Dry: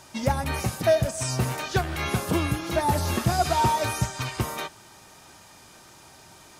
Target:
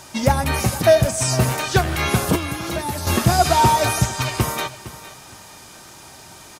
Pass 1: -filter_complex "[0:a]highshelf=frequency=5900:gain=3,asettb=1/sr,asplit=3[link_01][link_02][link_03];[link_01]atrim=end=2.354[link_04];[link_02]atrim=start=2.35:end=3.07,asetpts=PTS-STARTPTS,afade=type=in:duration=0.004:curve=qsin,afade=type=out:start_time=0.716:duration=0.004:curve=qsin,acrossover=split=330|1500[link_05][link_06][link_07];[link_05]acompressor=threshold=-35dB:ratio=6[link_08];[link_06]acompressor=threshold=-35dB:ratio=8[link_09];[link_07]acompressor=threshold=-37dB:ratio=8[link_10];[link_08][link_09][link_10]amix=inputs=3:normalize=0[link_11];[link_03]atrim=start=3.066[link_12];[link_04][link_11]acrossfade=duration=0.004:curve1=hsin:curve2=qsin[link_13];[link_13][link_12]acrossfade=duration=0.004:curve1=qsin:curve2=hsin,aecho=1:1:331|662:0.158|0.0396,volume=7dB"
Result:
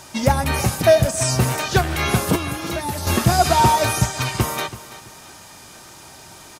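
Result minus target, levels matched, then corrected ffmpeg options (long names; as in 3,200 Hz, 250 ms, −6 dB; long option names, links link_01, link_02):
echo 129 ms early
-filter_complex "[0:a]highshelf=frequency=5900:gain=3,asettb=1/sr,asplit=3[link_01][link_02][link_03];[link_01]atrim=end=2.354[link_04];[link_02]atrim=start=2.35:end=3.07,asetpts=PTS-STARTPTS,afade=type=in:duration=0.004:curve=qsin,afade=type=out:start_time=0.716:duration=0.004:curve=qsin,acrossover=split=330|1500[link_05][link_06][link_07];[link_05]acompressor=threshold=-35dB:ratio=6[link_08];[link_06]acompressor=threshold=-35dB:ratio=8[link_09];[link_07]acompressor=threshold=-37dB:ratio=8[link_10];[link_08][link_09][link_10]amix=inputs=3:normalize=0[link_11];[link_03]atrim=start=3.066[link_12];[link_04][link_11]acrossfade=duration=0.004:curve1=hsin:curve2=qsin[link_13];[link_13][link_12]acrossfade=duration=0.004:curve1=qsin:curve2=hsin,aecho=1:1:460|920:0.158|0.0396,volume=7dB"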